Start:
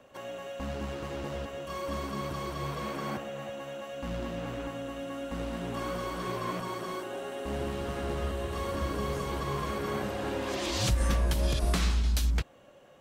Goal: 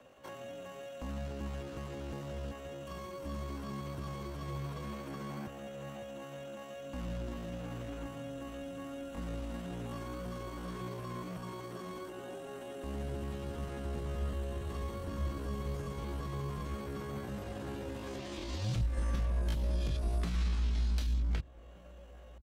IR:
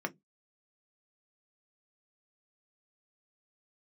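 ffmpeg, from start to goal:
-filter_complex "[0:a]acrossover=split=160|320|5400[link_01][link_02][link_03][link_04];[link_01]acompressor=threshold=-28dB:ratio=4[link_05];[link_02]acompressor=threshold=-45dB:ratio=4[link_06];[link_03]acompressor=threshold=-44dB:ratio=4[link_07];[link_04]acompressor=threshold=-60dB:ratio=4[link_08];[link_05][link_06][link_07][link_08]amix=inputs=4:normalize=0,atempo=0.58,asplit=2[link_09][link_10];[link_10]adelay=1516,volume=-22dB,highshelf=frequency=4000:gain=-34.1[link_11];[link_09][link_11]amix=inputs=2:normalize=0,volume=-1.5dB"

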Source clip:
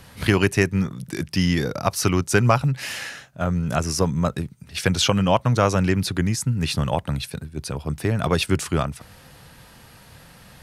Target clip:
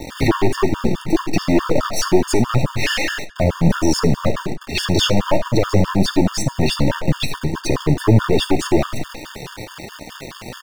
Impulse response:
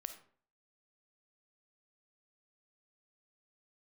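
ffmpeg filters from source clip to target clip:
-filter_complex "[0:a]equalizer=frequency=350:width_type=o:width=0.94:gain=13,asplit=2[link_01][link_02];[link_02]acompressor=threshold=-24dB:ratio=6,volume=-3dB[link_03];[link_01][link_03]amix=inputs=2:normalize=0,alimiter=limit=-9.5dB:level=0:latency=1:release=89,asplit=4[link_04][link_05][link_06][link_07];[link_05]adelay=82,afreqshift=-43,volume=-19dB[link_08];[link_06]adelay=164,afreqshift=-86,volume=-28.1dB[link_09];[link_07]adelay=246,afreqshift=-129,volume=-37.2dB[link_10];[link_04][link_08][link_09][link_10]amix=inputs=4:normalize=0,acrusher=bits=5:mix=0:aa=0.000001,aeval=exprs='0.376*(cos(1*acos(clip(val(0)/0.376,-1,1)))-cos(1*PI/2))+0.0668*(cos(4*acos(clip(val(0)/0.376,-1,1)))-cos(4*PI/2))+0.119*(cos(5*acos(clip(val(0)/0.376,-1,1)))-cos(5*PI/2))+0.0188*(cos(8*acos(clip(val(0)/0.376,-1,1)))-cos(8*PI/2))':channel_layout=same,flanger=delay=3.2:depth=6.3:regen=42:speed=1.3:shape=sinusoidal,asplit=2[link_11][link_12];[1:a]atrim=start_sample=2205,lowpass=6800[link_13];[link_12][link_13]afir=irnorm=-1:irlink=0,volume=7.5dB[link_14];[link_11][link_14]amix=inputs=2:normalize=0,afftfilt=real='re*gt(sin(2*PI*4.7*pts/sr)*(1-2*mod(floor(b*sr/1024/910),2)),0)':imag='im*gt(sin(2*PI*4.7*pts/sr)*(1-2*mod(floor(b*sr/1024/910),2)),0)':win_size=1024:overlap=0.75,volume=-2.5dB"

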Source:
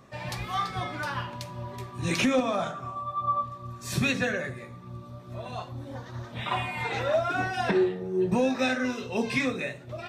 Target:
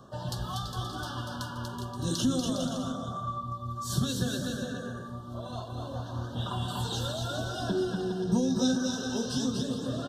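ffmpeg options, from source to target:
ffmpeg -i in.wav -filter_complex "[0:a]asettb=1/sr,asplit=3[link_01][link_02][link_03];[link_01]atrim=end=6.684[link_04];[link_02]atrim=start=6.68:end=7.12,asetpts=PTS-STARTPTS,afade=type=in:duration=0.004:curve=qsin,afade=type=out:start_time=0.436:duration=0.004:curve=qsin,highshelf=frequency=2900:gain=11[link_05];[link_03]atrim=start=7.116[link_06];[link_04][link_05]acrossfade=duration=0.004:curve1=hsin:curve2=qsin[link_07];[link_07][link_06]acrossfade=duration=0.004:curve1=qsin:curve2=hsin,aecho=1:1:240|408|525.6|607.9|665.5:0.631|0.398|0.251|0.158|0.1,acrossover=split=320|3000[link_08][link_09][link_10];[link_09]acompressor=threshold=-38dB:ratio=6[link_11];[link_08][link_11][link_10]amix=inputs=3:normalize=0,asuperstop=centerf=2200:order=12:qfactor=1.8,aphaser=in_gain=1:out_gain=1:delay=4.3:decay=0.26:speed=0.3:type=sinusoidal,asettb=1/sr,asplit=3[link_12][link_13][link_14];[link_12]atrim=end=8.224[link_15];[link_13]atrim=start=8.22:end=9.62,asetpts=PTS-STARTPTS,afade=type=in:duration=0.004:curve=qsin,afade=type=out:start_time=1.396:duration=0.004:curve=qsin,equalizer=frequency=5700:width_type=o:width=0.47:gain=7[link_16];[link_14]atrim=start=9.616[link_17];[link_15][link_16]acrossfade=duration=0.004:curve1=hsin:curve2=qsin[link_18];[link_18][link_17]acrossfade=duration=0.004:curve1=qsin:curve2=hsin" out.wav

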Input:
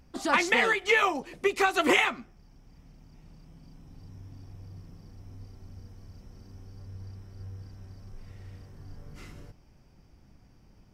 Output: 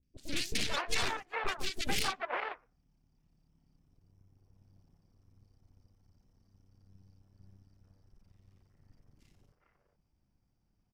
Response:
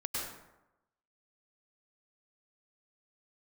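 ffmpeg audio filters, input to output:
-filter_complex "[0:a]aeval=exprs='0.398*(cos(1*acos(clip(val(0)/0.398,-1,1)))-cos(1*PI/2))+0.02*(cos(5*acos(clip(val(0)/0.398,-1,1)))-cos(5*PI/2))+0.0891*(cos(7*acos(clip(val(0)/0.398,-1,1)))-cos(7*PI/2))+0.1*(cos(8*acos(clip(val(0)/0.398,-1,1)))-cos(8*PI/2))':channel_layout=same,asettb=1/sr,asplit=3[link_01][link_02][link_03];[link_01]atrim=end=3.944[link_04];[link_02]atrim=start=3.94:end=4.52,asetpts=PTS-STARTPTS,afade=type=in:duration=0.004:curve=qsin,afade=type=out:start_time=0.576:duration=0.004:curve=qsin,equalizer=frequency=250:width_type=o:width=1:gain=-6,equalizer=frequency=500:width_type=o:width=1:gain=6,equalizer=frequency=4000:width_type=o:width=1:gain=-6[link_05];[link_03]atrim=start=4.516[link_06];[link_04][link_05]acrossfade=duration=0.004:curve1=hsin:curve2=qsin[link_07];[link_07][link_06]acrossfade=duration=0.004:curve1=qsin:curve2=hsin,acrossover=split=440|2100[link_08][link_09][link_10];[link_10]adelay=30[link_11];[link_09]adelay=440[link_12];[link_08][link_12][link_11]amix=inputs=3:normalize=0,volume=-9dB"

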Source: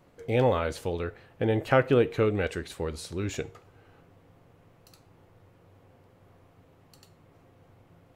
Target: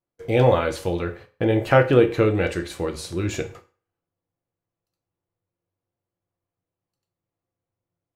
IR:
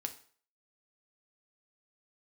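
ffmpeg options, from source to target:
-filter_complex "[0:a]agate=range=-35dB:threshold=-48dB:ratio=16:detection=peak[link_01];[1:a]atrim=start_sample=2205,asetrate=52920,aresample=44100[link_02];[link_01][link_02]afir=irnorm=-1:irlink=0,volume=8.5dB"

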